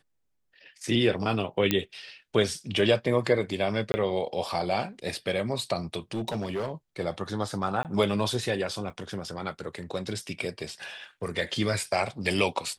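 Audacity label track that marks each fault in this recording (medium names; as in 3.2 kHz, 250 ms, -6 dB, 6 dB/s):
1.710000	1.710000	pop -8 dBFS
3.920000	3.940000	dropout 20 ms
6.110000	6.720000	clipped -26 dBFS
7.830000	7.850000	dropout 18 ms
8.900000	8.900000	dropout 5 ms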